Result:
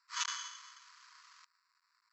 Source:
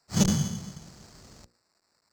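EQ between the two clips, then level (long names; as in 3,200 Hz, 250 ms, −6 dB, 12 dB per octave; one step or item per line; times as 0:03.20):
linear-phase brick-wall band-pass 940–7,900 Hz
high-frequency loss of the air 55 metres
high-shelf EQ 4,100 Hz −10.5 dB
+2.5 dB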